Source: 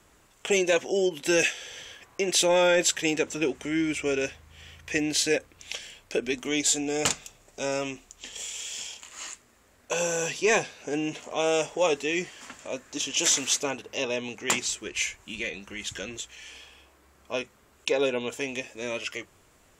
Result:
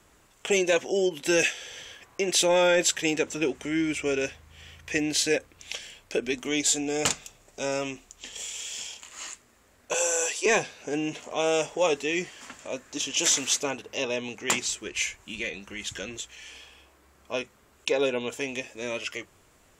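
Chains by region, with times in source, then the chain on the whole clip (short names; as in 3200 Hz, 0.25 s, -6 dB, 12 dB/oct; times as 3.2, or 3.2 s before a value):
9.94–10.46 HPF 390 Hz 24 dB/oct + bell 8600 Hz +12 dB 0.58 oct
whole clip: dry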